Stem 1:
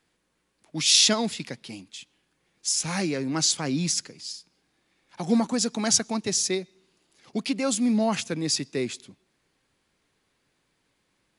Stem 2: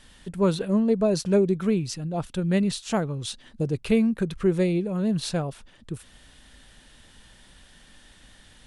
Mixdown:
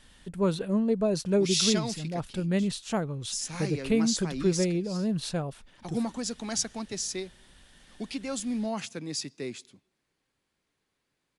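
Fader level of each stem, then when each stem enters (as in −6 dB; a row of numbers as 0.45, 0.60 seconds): −8.0, −4.0 decibels; 0.65, 0.00 seconds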